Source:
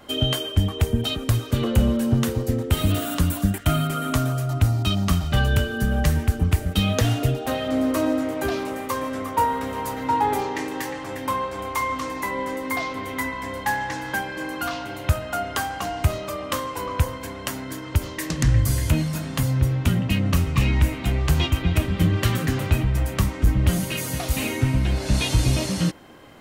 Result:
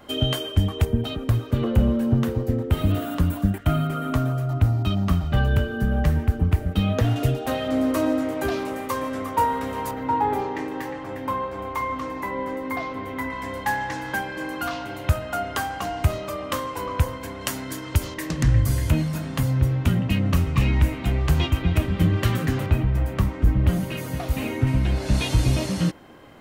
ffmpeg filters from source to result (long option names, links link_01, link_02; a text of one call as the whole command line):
ffmpeg -i in.wav -af "asetnsamples=nb_out_samples=441:pad=0,asendcmd='0.85 equalizer g -13.5;7.16 equalizer g -2.5;9.91 equalizer g -13;13.3 equalizer g -3.5;17.41 equalizer g 3;18.14 equalizer g -5.5;22.66 equalizer g -12.5;24.67 equalizer g -5',equalizer=frequency=8300:width_type=o:width=2.7:gain=-4" out.wav